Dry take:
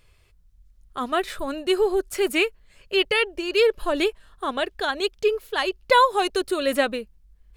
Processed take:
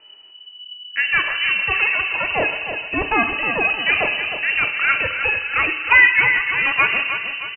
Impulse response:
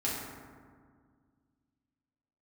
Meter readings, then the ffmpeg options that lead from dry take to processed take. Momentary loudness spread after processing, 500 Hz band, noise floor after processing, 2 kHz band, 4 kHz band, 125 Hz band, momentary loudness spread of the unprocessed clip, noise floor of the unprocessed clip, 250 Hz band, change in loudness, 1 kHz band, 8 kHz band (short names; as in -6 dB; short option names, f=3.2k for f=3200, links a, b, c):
10 LU, -8.0 dB, -43 dBFS, +13.0 dB, +2.5 dB, n/a, 9 LU, -58 dBFS, -4.0 dB, +6.5 dB, +0.5 dB, under -40 dB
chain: -filter_complex "[0:a]acrossover=split=530[a][b];[a]aeval=exprs='0.0299*(abs(mod(val(0)/0.0299+3,4)-2)-1)':c=same[c];[b]tremolo=f=1:d=0.36[d];[c][d]amix=inputs=2:normalize=0,asoftclip=type=tanh:threshold=-13.5dB,aecho=1:1:311|622|933|1244|1555:0.355|0.17|0.0817|0.0392|0.0188,asplit=2[e][f];[1:a]atrim=start_sample=2205,lowshelf=f=210:g=9[g];[f][g]afir=irnorm=-1:irlink=0,volume=-9.5dB[h];[e][h]amix=inputs=2:normalize=0,lowpass=f=2.6k:t=q:w=0.5098,lowpass=f=2.6k:t=q:w=0.6013,lowpass=f=2.6k:t=q:w=0.9,lowpass=f=2.6k:t=q:w=2.563,afreqshift=-3000,volume=6dB"